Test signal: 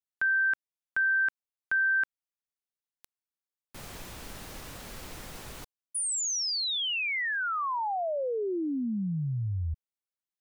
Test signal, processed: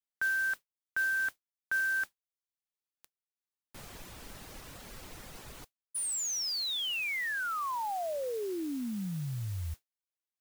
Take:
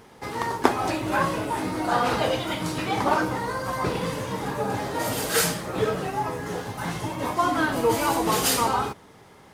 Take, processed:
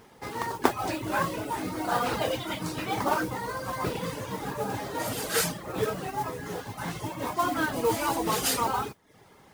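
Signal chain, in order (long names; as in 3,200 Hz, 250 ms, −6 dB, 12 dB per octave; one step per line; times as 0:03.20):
reverb reduction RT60 0.52 s
noise that follows the level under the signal 17 dB
level −3.5 dB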